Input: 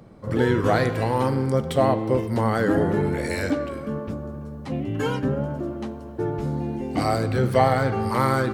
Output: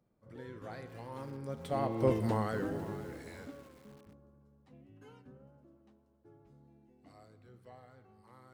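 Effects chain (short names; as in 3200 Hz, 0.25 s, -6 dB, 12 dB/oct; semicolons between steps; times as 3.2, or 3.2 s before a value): Doppler pass-by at 2.15, 12 m/s, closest 1.7 m; lo-fi delay 0.503 s, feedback 35%, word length 7-bit, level -14 dB; gain -5 dB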